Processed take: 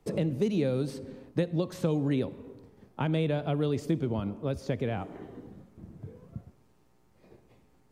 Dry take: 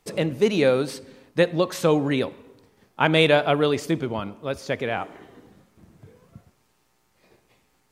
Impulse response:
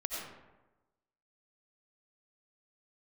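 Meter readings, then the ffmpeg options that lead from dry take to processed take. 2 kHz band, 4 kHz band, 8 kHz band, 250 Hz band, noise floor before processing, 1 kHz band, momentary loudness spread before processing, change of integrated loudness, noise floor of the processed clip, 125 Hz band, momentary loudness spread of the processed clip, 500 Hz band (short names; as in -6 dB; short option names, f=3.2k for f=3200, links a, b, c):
-17.0 dB, -16.0 dB, -12.0 dB, -4.5 dB, -67 dBFS, -13.0 dB, 13 LU, -8.0 dB, -64 dBFS, -1.0 dB, 19 LU, -10.0 dB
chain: -filter_complex "[0:a]acrossover=split=210|2900[a][b][c];[a]acompressor=threshold=-36dB:ratio=4[d];[b]acompressor=threshold=-33dB:ratio=4[e];[c]acompressor=threshold=-38dB:ratio=4[f];[d][e][f]amix=inputs=3:normalize=0,tiltshelf=f=820:g=7.5,volume=-1.5dB"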